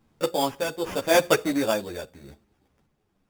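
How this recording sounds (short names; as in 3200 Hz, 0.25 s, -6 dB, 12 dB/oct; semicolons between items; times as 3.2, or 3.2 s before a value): aliases and images of a low sample rate 4100 Hz, jitter 0%; random-step tremolo; a shimmering, thickened sound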